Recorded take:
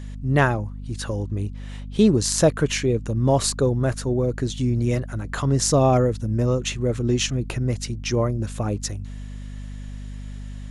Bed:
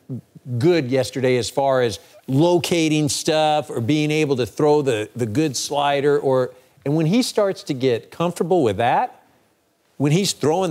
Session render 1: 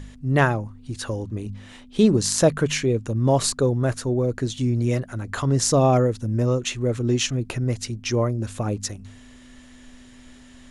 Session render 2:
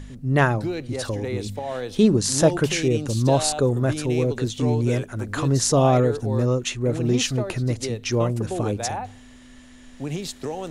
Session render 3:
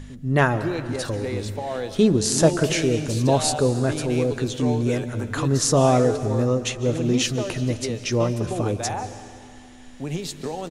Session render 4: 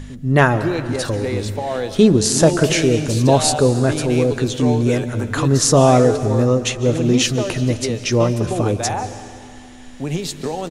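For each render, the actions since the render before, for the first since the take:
de-hum 50 Hz, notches 4
add bed -12 dB
doubling 12 ms -12.5 dB; algorithmic reverb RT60 2.3 s, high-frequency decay 0.95×, pre-delay 110 ms, DRR 12 dB
trim +5.5 dB; peak limiter -1 dBFS, peak gain reduction 3 dB

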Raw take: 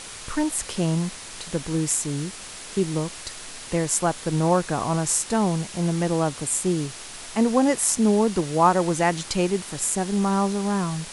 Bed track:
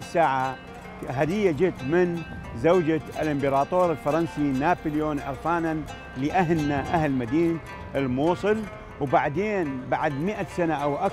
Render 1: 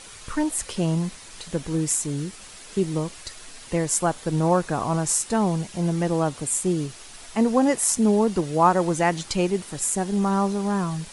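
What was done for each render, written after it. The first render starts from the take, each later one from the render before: noise reduction 7 dB, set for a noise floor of -39 dBFS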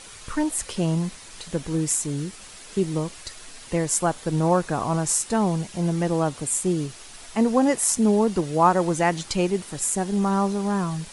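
no audible change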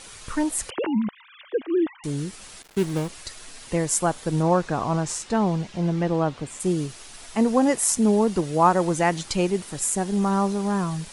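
0.70–2.04 s: formants replaced by sine waves; 2.62–3.09 s: dead-time distortion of 0.23 ms; 4.42–6.59 s: low-pass 6.8 kHz -> 3.6 kHz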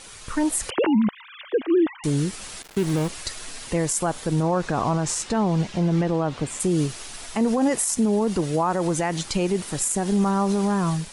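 level rider gain up to 6 dB; peak limiter -13.5 dBFS, peak gain reduction 11 dB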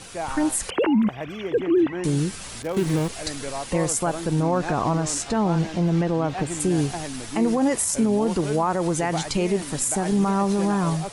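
add bed track -9.5 dB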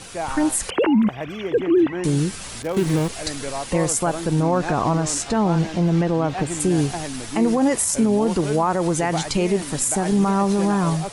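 trim +2.5 dB

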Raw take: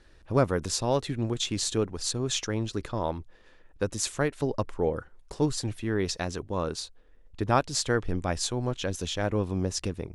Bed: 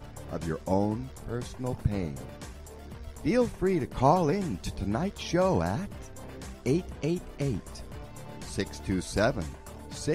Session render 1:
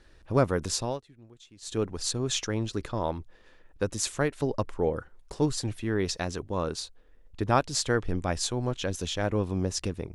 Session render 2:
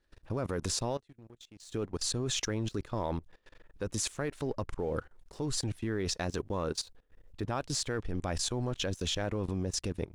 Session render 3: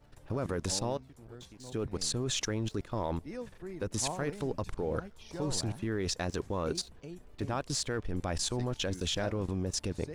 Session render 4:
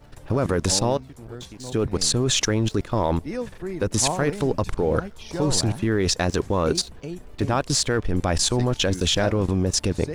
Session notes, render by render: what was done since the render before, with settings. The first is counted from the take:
0.70–1.92 s: dip -23.5 dB, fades 0.31 s equal-power
level held to a coarse grid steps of 18 dB; waveshaping leveller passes 1
add bed -16.5 dB
trim +11.5 dB

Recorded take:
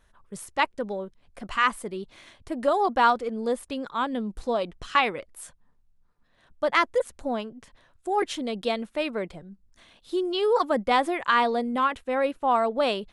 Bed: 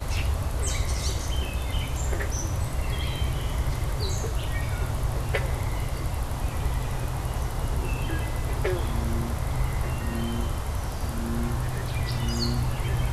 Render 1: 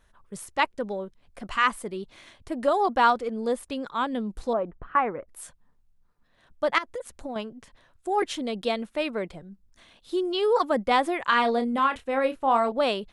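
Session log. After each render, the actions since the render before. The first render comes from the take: 4.53–5.28 s: low-pass 1.6 kHz 24 dB/octave; 6.78–7.36 s: compression 12:1, threshold -30 dBFS; 11.25–12.72 s: doubling 30 ms -8.5 dB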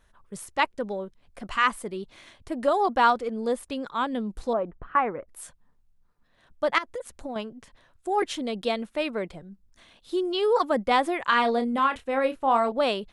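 no audible change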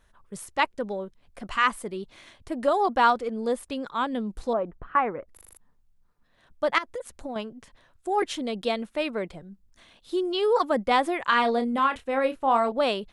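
5.33 s: stutter in place 0.04 s, 6 plays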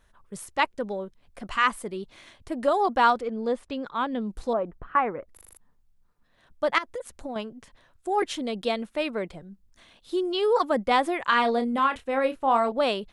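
3.21–4.22 s: distance through air 93 m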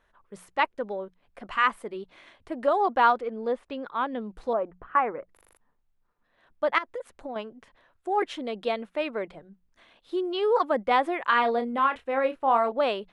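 tone controls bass -9 dB, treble -13 dB; hum notches 60/120/180 Hz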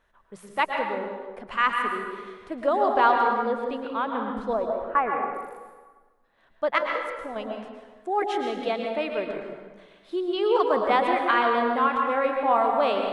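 plate-style reverb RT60 1.4 s, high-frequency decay 0.7×, pre-delay 100 ms, DRR 2 dB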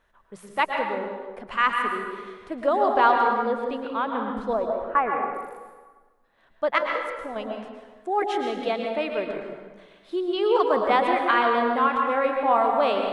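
trim +1 dB

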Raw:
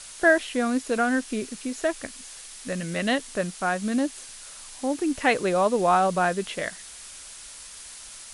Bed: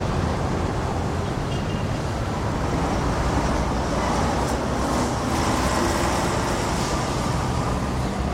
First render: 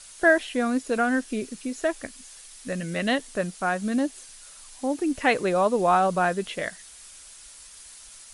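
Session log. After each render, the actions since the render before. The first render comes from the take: noise reduction 6 dB, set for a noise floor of -43 dBFS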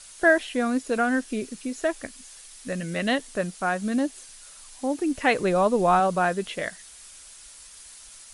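5.38–6.00 s: bass shelf 120 Hz +11.5 dB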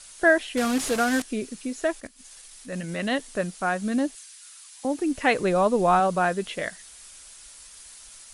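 0.57–1.22 s: one-bit delta coder 64 kbps, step -23.5 dBFS; 2.00–3.16 s: transient shaper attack -7 dB, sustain -11 dB; 4.15–4.85 s: high-pass 1.4 kHz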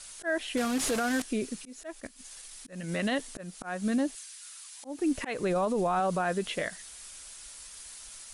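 slow attack 277 ms; peak limiter -20.5 dBFS, peak gain reduction 10 dB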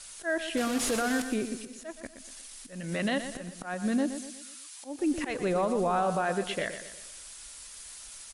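feedback delay 120 ms, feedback 44%, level -10 dB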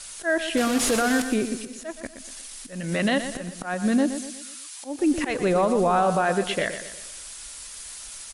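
trim +6.5 dB

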